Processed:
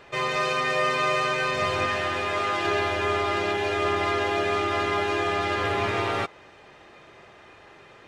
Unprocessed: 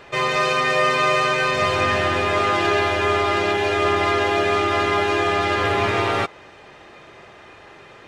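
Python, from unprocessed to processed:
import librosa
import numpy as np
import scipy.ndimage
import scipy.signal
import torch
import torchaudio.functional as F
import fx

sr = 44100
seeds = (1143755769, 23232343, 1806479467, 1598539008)

y = fx.low_shelf(x, sr, hz=410.0, db=-5.5, at=(1.86, 2.65))
y = y * 10.0 ** (-5.5 / 20.0)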